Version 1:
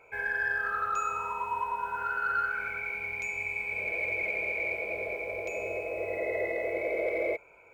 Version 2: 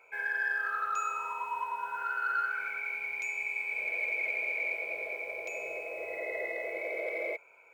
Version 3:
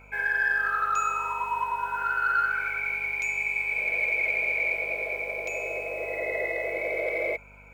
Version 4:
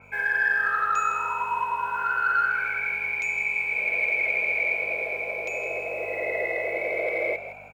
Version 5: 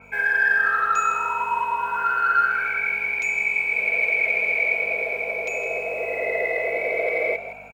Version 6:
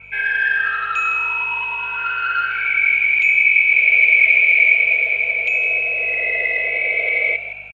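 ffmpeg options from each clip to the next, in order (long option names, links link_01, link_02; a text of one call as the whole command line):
ffmpeg -i in.wav -af "highpass=frequency=1000:poles=1" out.wav
ffmpeg -i in.wav -af "aeval=exprs='val(0)+0.00112*(sin(2*PI*50*n/s)+sin(2*PI*2*50*n/s)/2+sin(2*PI*3*50*n/s)/3+sin(2*PI*4*50*n/s)/4+sin(2*PI*5*50*n/s)/5)':channel_layout=same,volume=6.5dB" out.wav
ffmpeg -i in.wav -filter_complex "[0:a]highpass=frequency=66:width=0.5412,highpass=frequency=66:width=1.3066,asplit=5[link_01][link_02][link_03][link_04][link_05];[link_02]adelay=162,afreqshift=59,volume=-11.5dB[link_06];[link_03]adelay=324,afreqshift=118,volume=-20.1dB[link_07];[link_04]adelay=486,afreqshift=177,volume=-28.8dB[link_08];[link_05]adelay=648,afreqshift=236,volume=-37.4dB[link_09];[link_01][link_06][link_07][link_08][link_09]amix=inputs=5:normalize=0,adynamicequalizer=threshold=0.00794:dfrequency=4900:dqfactor=0.7:tfrequency=4900:tqfactor=0.7:attack=5:release=100:ratio=0.375:range=2.5:mode=cutabove:tftype=highshelf,volume=1.5dB" out.wav
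ffmpeg -i in.wav -af "aecho=1:1:4.4:0.41,volume=2.5dB" out.wav
ffmpeg -i in.wav -af "firequalizer=gain_entry='entry(120,0);entry(220,-14);entry(590,-10);entry(920,-12);entry(2800,11);entry(4800,-8);entry(6800,-15)':delay=0.05:min_phase=1,volume=4.5dB" out.wav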